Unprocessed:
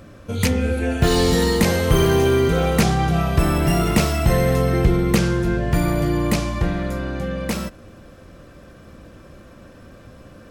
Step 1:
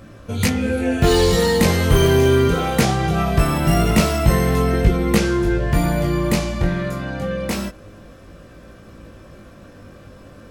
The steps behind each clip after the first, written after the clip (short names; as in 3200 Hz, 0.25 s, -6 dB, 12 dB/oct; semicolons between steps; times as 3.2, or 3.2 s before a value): chorus 0.23 Hz, delay 18 ms, depth 4.4 ms; gain +4.5 dB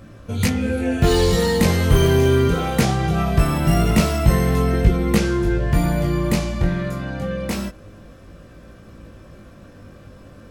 tone controls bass +3 dB, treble 0 dB; gain -2.5 dB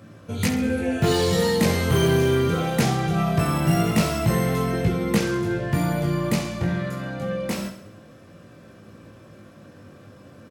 HPF 94 Hz 24 dB/oct; hard clip -9.5 dBFS, distortion -25 dB; feedback echo 67 ms, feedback 51%, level -10.5 dB; gain -2.5 dB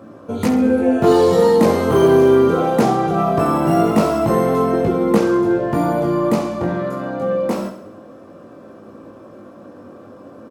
band shelf 540 Hz +13.5 dB 2.9 oct; gain -3.5 dB